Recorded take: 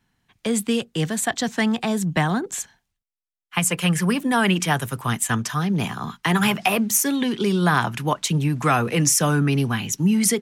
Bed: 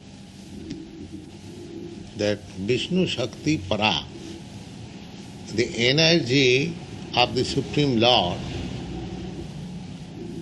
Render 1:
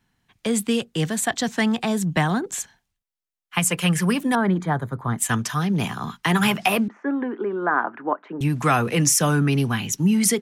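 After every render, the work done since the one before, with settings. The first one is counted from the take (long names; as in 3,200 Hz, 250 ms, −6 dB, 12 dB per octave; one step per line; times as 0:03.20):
0:04.35–0:05.18: moving average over 16 samples
0:06.88–0:08.41: elliptic band-pass filter 280–1,600 Hz, stop band 80 dB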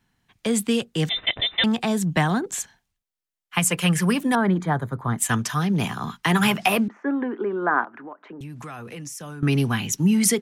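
0:01.09–0:01.64: voice inversion scrambler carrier 3,800 Hz
0:07.84–0:09.43: downward compressor 4 to 1, threshold −37 dBFS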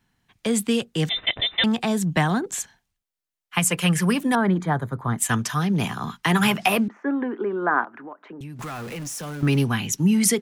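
0:08.59–0:09.64: converter with a step at zero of −34.5 dBFS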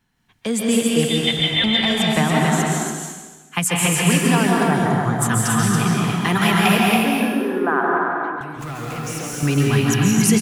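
on a send: loudspeakers that aren't time-aligned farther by 58 metres −11 dB, 96 metres −4 dB
on the sum: dense smooth reverb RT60 1.3 s, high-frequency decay 1×, pre-delay 120 ms, DRR −1.5 dB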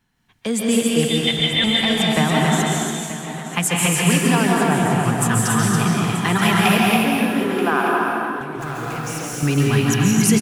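single-tap delay 931 ms −13 dB
feedback echo with a swinging delay time 285 ms, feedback 70%, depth 113 cents, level −20 dB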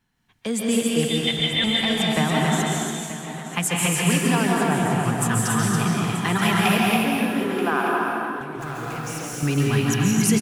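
level −3.5 dB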